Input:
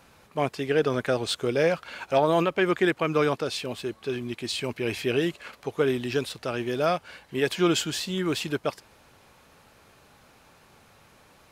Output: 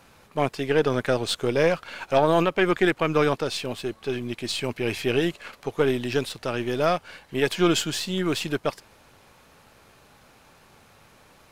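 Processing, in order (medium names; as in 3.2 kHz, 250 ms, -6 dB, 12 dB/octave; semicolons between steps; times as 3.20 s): partial rectifier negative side -3 dB; trim +3 dB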